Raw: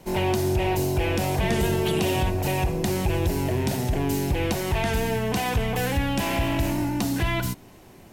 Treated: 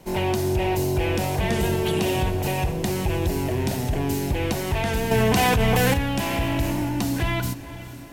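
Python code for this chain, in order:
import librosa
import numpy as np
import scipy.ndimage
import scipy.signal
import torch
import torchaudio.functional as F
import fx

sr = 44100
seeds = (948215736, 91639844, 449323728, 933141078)

y = fx.echo_diffused(x, sr, ms=467, feedback_pct=53, wet_db=-15.0)
y = fx.env_flatten(y, sr, amount_pct=100, at=(5.11, 5.94))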